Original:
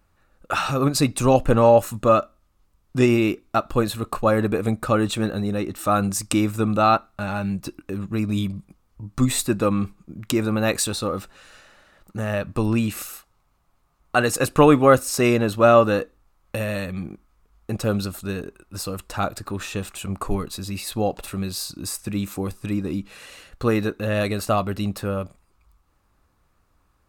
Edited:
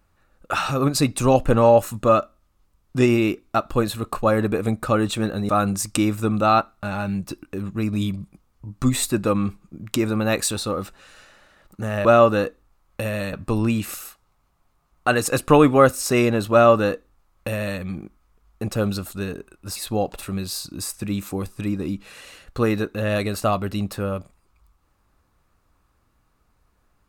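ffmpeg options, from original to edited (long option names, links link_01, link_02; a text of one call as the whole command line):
ffmpeg -i in.wav -filter_complex "[0:a]asplit=5[link_01][link_02][link_03][link_04][link_05];[link_01]atrim=end=5.492[link_06];[link_02]atrim=start=5.848:end=12.412[link_07];[link_03]atrim=start=15.598:end=16.882[link_08];[link_04]atrim=start=12.408:end=18.842[link_09];[link_05]atrim=start=20.808[link_10];[link_06][link_07]acrossfade=duration=0.004:curve1=hsin:curve2=hsin[link_11];[link_11][link_08]acrossfade=duration=0.004:curve1=hsin:curve2=hsin[link_12];[link_12][link_09]acrossfade=duration=0.004:curve1=hsin:curve2=hsin[link_13];[link_13][link_10]acrossfade=duration=0.004:curve1=hsin:curve2=hsin" out.wav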